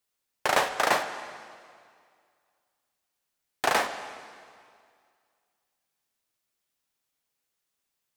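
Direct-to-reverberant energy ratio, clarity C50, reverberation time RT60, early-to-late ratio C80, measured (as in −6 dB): 9.0 dB, 10.0 dB, 2.2 s, 11.0 dB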